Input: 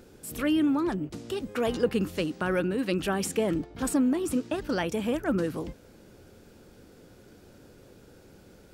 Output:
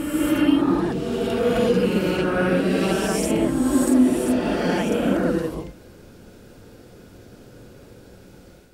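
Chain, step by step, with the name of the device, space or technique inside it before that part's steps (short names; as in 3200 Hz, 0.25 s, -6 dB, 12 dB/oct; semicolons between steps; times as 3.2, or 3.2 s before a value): reverse reverb (reverse; reverb RT60 2.4 s, pre-delay 34 ms, DRR -6 dB; reverse)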